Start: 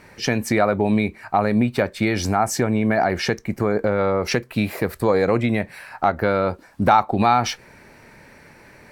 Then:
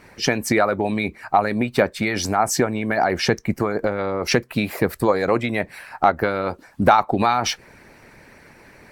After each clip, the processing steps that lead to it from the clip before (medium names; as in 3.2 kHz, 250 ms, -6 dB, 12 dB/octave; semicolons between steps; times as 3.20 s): harmonic-percussive split harmonic -10 dB; trim +3.5 dB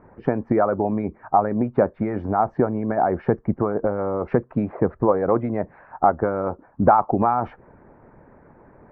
low-pass 1.2 kHz 24 dB/octave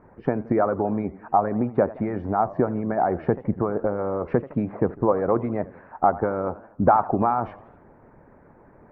modulated delay 81 ms, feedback 53%, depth 208 cents, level -18 dB; trim -2 dB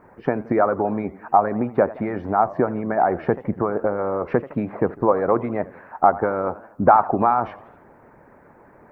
tilt EQ +2 dB/octave; trim +4.5 dB